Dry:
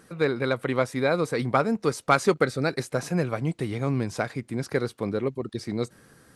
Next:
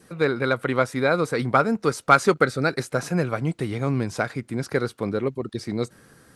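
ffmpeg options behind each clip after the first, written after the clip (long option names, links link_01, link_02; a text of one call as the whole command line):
ffmpeg -i in.wav -af "adynamicequalizer=threshold=0.00794:dfrequency=1400:dqfactor=4.5:tfrequency=1400:tqfactor=4.5:attack=5:release=100:ratio=0.375:range=3:mode=boostabove:tftype=bell,volume=2dB" out.wav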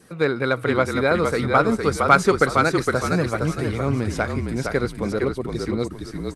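ffmpeg -i in.wav -filter_complex "[0:a]asplit=5[link_01][link_02][link_03][link_04][link_05];[link_02]adelay=461,afreqshift=-43,volume=-4.5dB[link_06];[link_03]adelay=922,afreqshift=-86,volume=-13.9dB[link_07];[link_04]adelay=1383,afreqshift=-129,volume=-23.2dB[link_08];[link_05]adelay=1844,afreqshift=-172,volume=-32.6dB[link_09];[link_01][link_06][link_07][link_08][link_09]amix=inputs=5:normalize=0,volume=1dB" out.wav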